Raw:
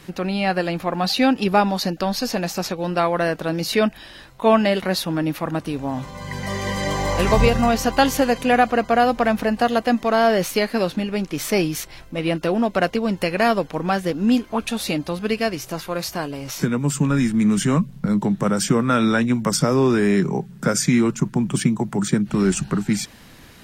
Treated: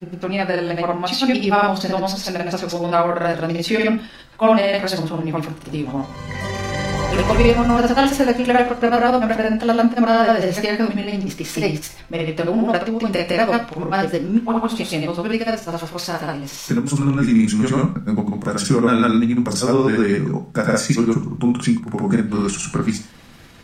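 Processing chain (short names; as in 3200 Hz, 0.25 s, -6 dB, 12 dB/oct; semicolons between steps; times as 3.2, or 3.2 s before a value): high shelf 11000 Hz -7 dB; grains, pitch spread up and down by 0 st; non-linear reverb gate 0.15 s falling, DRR 6 dB; gain +1.5 dB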